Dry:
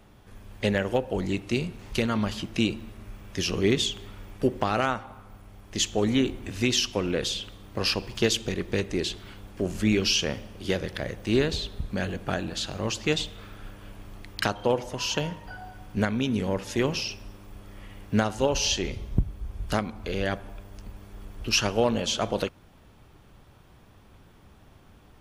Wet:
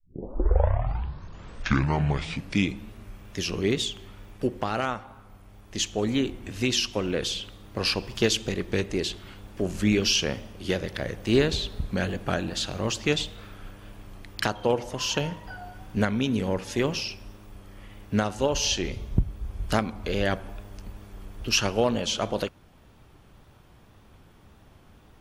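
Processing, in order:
turntable start at the beginning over 2.98 s
tape wow and flutter 51 cents
speech leveller within 4 dB 2 s

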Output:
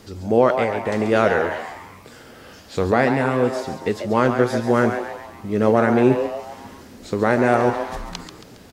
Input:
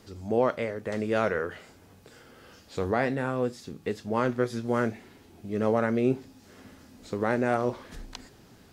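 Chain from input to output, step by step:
echo with shifted repeats 137 ms, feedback 47%, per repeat +140 Hz, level −8.5 dB
level +8.5 dB

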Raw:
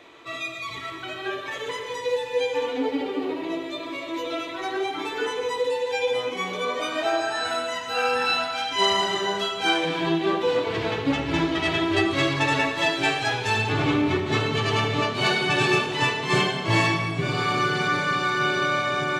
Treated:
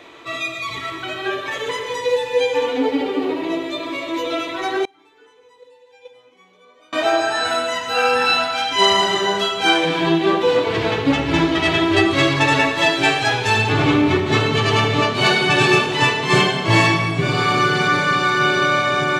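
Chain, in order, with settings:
0:04.85–0:06.93: noise gate −18 dBFS, range −30 dB
level +6.5 dB

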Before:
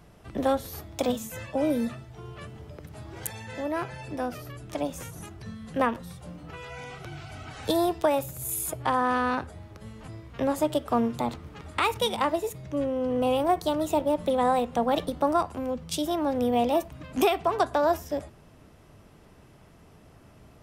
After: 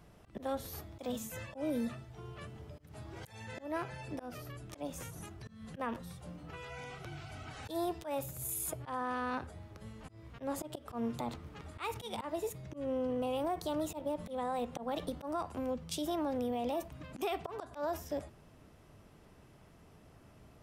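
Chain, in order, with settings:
volume swells 176 ms
brickwall limiter −22 dBFS, peak gain reduction 8.5 dB
level −5.5 dB

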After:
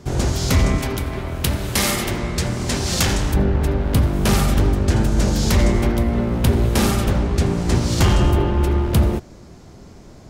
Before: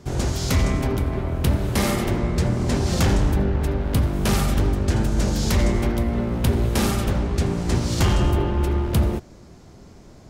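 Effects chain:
0:00.78–0:03.34: tilt shelving filter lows −5.5 dB, about 1,400 Hz
level +3.5 dB

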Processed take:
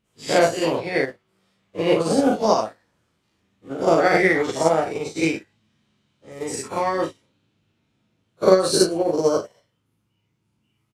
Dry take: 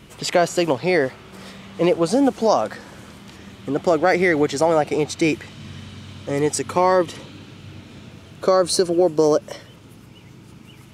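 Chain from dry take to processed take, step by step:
every bin's largest magnitude spread in time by 120 ms
on a send: ambience of single reflections 18 ms −11 dB, 37 ms −3 dB
on the sum: expander for the loud parts 2.5 to 1, over −28 dBFS
level −2 dB

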